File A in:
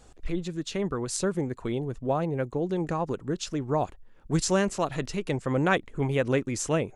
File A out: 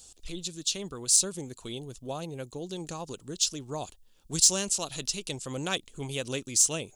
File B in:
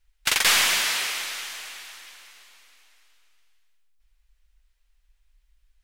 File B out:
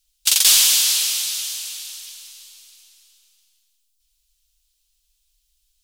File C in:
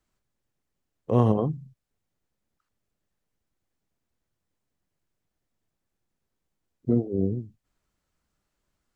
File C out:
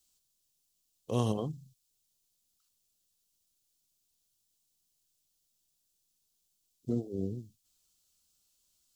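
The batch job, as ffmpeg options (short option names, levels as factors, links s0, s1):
-af "aexciter=amount=5.4:drive=8.9:freq=2900,volume=0.335"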